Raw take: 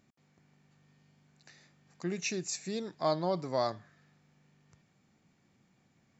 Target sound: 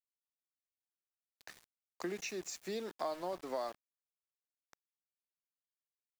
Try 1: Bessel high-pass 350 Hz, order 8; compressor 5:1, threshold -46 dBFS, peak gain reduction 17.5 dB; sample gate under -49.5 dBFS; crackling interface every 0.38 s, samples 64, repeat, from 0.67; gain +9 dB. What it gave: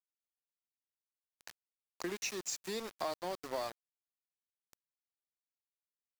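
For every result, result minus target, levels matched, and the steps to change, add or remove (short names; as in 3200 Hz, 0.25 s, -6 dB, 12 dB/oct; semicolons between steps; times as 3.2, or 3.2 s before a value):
sample gate: distortion +7 dB; 8000 Hz band +4.5 dB
change: sample gate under -57.5 dBFS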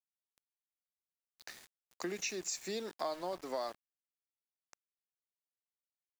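8000 Hz band +4.5 dB
add after compressor: high shelf 3300 Hz -7.5 dB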